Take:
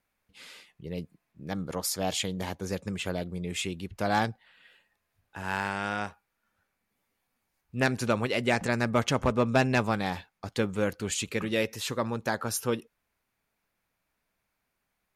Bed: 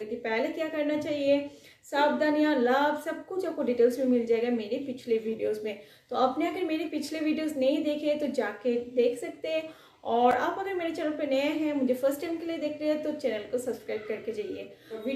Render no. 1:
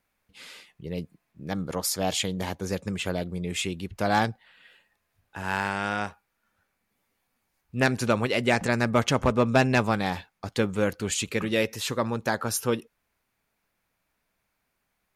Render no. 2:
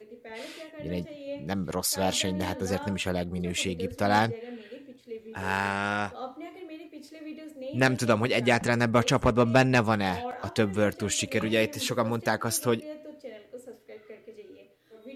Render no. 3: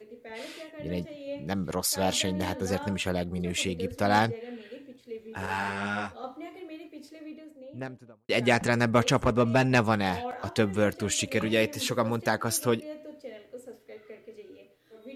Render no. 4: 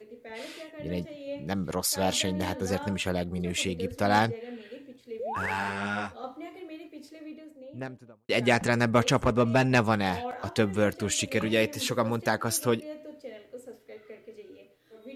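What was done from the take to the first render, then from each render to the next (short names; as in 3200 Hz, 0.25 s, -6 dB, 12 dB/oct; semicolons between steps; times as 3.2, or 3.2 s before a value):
gain +3 dB
add bed -13 dB
5.46–6.24 ensemble effect; 6.85–8.29 studio fade out; 9.2–9.72 core saturation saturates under 340 Hz
5.19–5.51 painted sound rise 420–2400 Hz -33 dBFS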